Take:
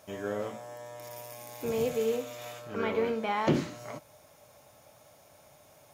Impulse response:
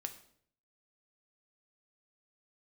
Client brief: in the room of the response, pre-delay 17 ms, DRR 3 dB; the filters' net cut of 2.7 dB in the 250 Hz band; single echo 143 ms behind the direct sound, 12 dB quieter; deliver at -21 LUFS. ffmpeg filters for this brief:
-filter_complex "[0:a]equalizer=f=250:t=o:g=-3.5,aecho=1:1:143:0.251,asplit=2[s0][s1];[1:a]atrim=start_sample=2205,adelay=17[s2];[s1][s2]afir=irnorm=-1:irlink=0,volume=0.891[s3];[s0][s3]amix=inputs=2:normalize=0,volume=3.55"

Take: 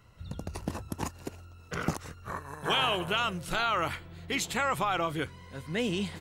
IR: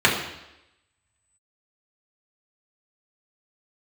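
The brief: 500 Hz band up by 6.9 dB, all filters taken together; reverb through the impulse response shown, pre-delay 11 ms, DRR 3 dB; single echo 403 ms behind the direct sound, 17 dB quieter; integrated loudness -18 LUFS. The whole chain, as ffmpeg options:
-filter_complex "[0:a]equalizer=f=500:t=o:g=8.5,aecho=1:1:403:0.141,asplit=2[s0][s1];[1:a]atrim=start_sample=2205,adelay=11[s2];[s1][s2]afir=irnorm=-1:irlink=0,volume=0.0631[s3];[s0][s3]amix=inputs=2:normalize=0,volume=2.99"

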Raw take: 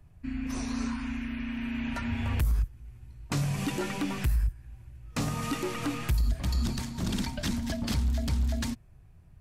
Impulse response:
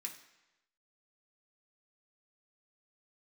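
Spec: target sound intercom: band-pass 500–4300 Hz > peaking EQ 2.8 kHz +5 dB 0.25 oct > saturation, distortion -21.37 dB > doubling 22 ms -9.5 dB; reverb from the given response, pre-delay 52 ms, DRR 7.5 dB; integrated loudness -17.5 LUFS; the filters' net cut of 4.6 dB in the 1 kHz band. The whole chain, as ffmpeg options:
-filter_complex "[0:a]equalizer=f=1000:t=o:g=-5.5,asplit=2[s0][s1];[1:a]atrim=start_sample=2205,adelay=52[s2];[s1][s2]afir=irnorm=-1:irlink=0,volume=0.596[s3];[s0][s3]amix=inputs=2:normalize=0,highpass=500,lowpass=4300,equalizer=f=2800:t=o:w=0.25:g=5,asoftclip=threshold=0.0398,asplit=2[s4][s5];[s5]adelay=22,volume=0.335[s6];[s4][s6]amix=inputs=2:normalize=0,volume=13.3"

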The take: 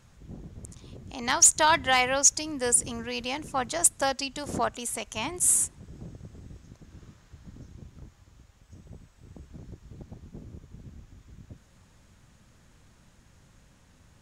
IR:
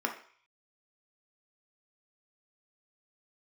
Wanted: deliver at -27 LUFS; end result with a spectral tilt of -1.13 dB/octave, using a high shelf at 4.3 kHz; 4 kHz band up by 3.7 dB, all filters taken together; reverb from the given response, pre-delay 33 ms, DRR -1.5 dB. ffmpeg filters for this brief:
-filter_complex "[0:a]equalizer=f=4000:t=o:g=7.5,highshelf=f=4300:g=-4,asplit=2[s0][s1];[1:a]atrim=start_sample=2205,adelay=33[s2];[s1][s2]afir=irnorm=-1:irlink=0,volume=0.531[s3];[s0][s3]amix=inputs=2:normalize=0,volume=0.562"

